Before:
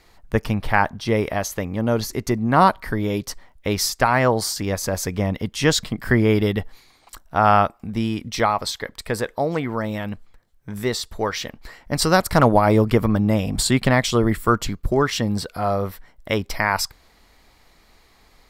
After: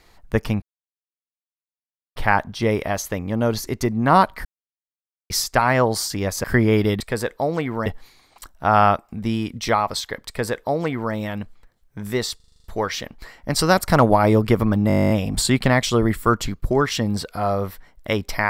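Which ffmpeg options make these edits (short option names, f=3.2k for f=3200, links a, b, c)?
-filter_complex "[0:a]asplit=25[a][b][c][d][e][f][g][h][i][j][k][l][m][n][o][p][q][r][s][t][u][v][w][x][y];[a]atrim=end=0.62,asetpts=PTS-STARTPTS,afade=t=out:st=0.616:d=0.004:c=hsin,apad=pad_dur=1.54[z];[b]atrim=start=0.62:end=2.91,asetpts=PTS-STARTPTS,afade=t=in:d=0.004:c=hsin,afade=t=out:st=2.286:d=0.004:c=hsin[aa];[c]atrim=start=2.91:end=3.76,asetpts=PTS-STARTPTS,volume=0[ab];[d]atrim=start=3.76:end=4.902,asetpts=PTS-STARTPTS,afade=t=in:d=0.004:c=hsin[ac];[e]atrim=start=6.008:end=6.572[ad];[f]atrim=start=8.978:end=9.842[ae];[g]atrim=start=6.568:end=11.112[af];[h]atrim=start=11.068:end=11.112[ag];[i]atrim=start=11.068:end=11.112[ah];[j]atrim=start=11.068:end=11.112[ai];[k]atrim=start=11.068:end=11.112[aj];[l]atrim=start=11.068:end=11.112[ak];[m]atrim=start=11.068:end=11.112[al];[n]atrim=start=11.068:end=13.332[am];[o]atrim=start=13.308:end=13.332[an];[p]atrim=start=13.308:end=13.332[ao];[q]atrim=start=13.308:end=13.332[ap];[r]atrim=start=13.308:end=13.332[aq];[s]atrim=start=13.308:end=13.332[ar];[t]atrim=start=13.308:end=13.332[as];[u]atrim=start=13.308:end=13.332[at];[v]atrim=start=13.308:end=13.332[au];[w]atrim=start=13.308:end=13.332[av];[x]atrim=start=13.308:end=13.332[aw];[y]atrim=start=13.308[ax];[z][aa][ab][ac]concat=n=4:v=0:a=1[ay];[ay][ad]acrossfade=d=0.004:c1=hsin:c2=hsin[az];[az][ae]acrossfade=d=0.004:c1=hsin:c2=hsin[ba];[ba][af]acrossfade=d=0.004:c1=hsin:c2=hsin[bb];[bb][ag]acrossfade=d=0.004:c1=hsin:c2=hsin[bc];[bc][ah]acrossfade=d=0.004:c1=hsin:c2=hsin[bd];[bd][ai]acrossfade=d=0.004:c1=hsin:c2=hsin[be];[be][aj]acrossfade=d=0.004:c1=hsin:c2=hsin[bf];[bf][ak]acrossfade=d=0.004:c1=hsin:c2=hsin[bg];[bg][al]acrossfade=d=0.004:c1=hsin:c2=hsin[bh];[bh][am]acrossfade=d=0.004:c1=hsin:c2=hsin[bi];[bi][an]acrossfade=d=0.004:c1=hsin:c2=hsin[bj];[bj][ao]acrossfade=d=0.004:c1=hsin:c2=hsin[bk];[bk][ap]acrossfade=d=0.004:c1=hsin:c2=hsin[bl];[bl][aq]acrossfade=d=0.004:c1=hsin:c2=hsin[bm];[bm][ar]acrossfade=d=0.004:c1=hsin:c2=hsin[bn];[bn][as]acrossfade=d=0.004:c1=hsin:c2=hsin[bo];[bo][at]acrossfade=d=0.004:c1=hsin:c2=hsin[bp];[bp][au]acrossfade=d=0.004:c1=hsin:c2=hsin[bq];[bq][av]acrossfade=d=0.004:c1=hsin:c2=hsin[br];[br][aw]acrossfade=d=0.004:c1=hsin:c2=hsin[bs];[bs][ax]acrossfade=d=0.004:c1=hsin:c2=hsin"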